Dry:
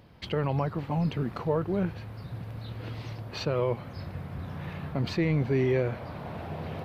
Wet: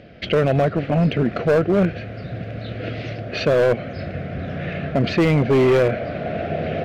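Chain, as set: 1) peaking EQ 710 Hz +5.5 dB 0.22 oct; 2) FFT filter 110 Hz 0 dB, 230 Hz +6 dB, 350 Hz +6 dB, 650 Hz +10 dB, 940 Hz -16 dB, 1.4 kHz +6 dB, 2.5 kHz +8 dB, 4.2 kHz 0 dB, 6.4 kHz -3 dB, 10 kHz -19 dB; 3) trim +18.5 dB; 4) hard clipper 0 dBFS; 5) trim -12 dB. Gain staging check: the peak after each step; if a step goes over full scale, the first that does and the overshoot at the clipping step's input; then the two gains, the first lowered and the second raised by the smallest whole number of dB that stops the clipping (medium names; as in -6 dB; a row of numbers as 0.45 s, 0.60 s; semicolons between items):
-15.0 dBFS, -8.5 dBFS, +10.0 dBFS, 0.0 dBFS, -12.0 dBFS; step 3, 10.0 dB; step 3 +8.5 dB, step 5 -2 dB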